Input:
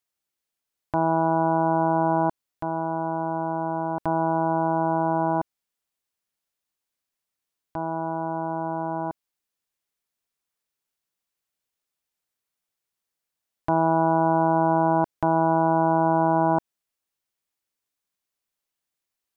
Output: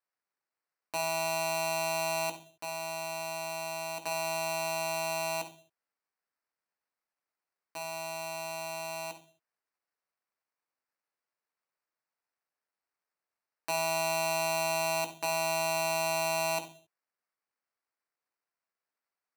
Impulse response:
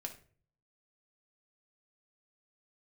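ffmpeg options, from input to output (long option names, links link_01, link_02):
-filter_complex "[1:a]atrim=start_sample=2205,afade=type=out:start_time=0.33:duration=0.01,atrim=end_sample=14994[link_01];[0:a][link_01]afir=irnorm=-1:irlink=0,acrusher=samples=13:mix=1:aa=0.000001,highpass=frequency=970:poles=1,volume=-3dB"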